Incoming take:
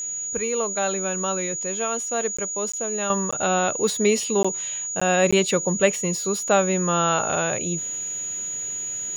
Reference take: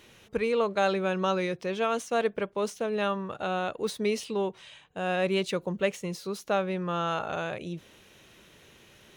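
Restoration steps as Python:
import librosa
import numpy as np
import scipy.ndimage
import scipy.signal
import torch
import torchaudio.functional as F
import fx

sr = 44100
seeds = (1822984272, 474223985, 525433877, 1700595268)

y = fx.notch(x, sr, hz=6800.0, q=30.0)
y = fx.fix_interpolate(y, sr, at_s=(2.37, 2.72, 3.31, 4.43, 5.0, 5.31), length_ms=15.0)
y = fx.fix_level(y, sr, at_s=3.1, step_db=-8.0)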